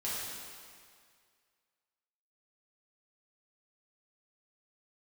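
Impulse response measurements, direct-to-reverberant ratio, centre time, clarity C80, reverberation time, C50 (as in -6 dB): -9.0 dB, 132 ms, 0.0 dB, 2.0 s, -2.5 dB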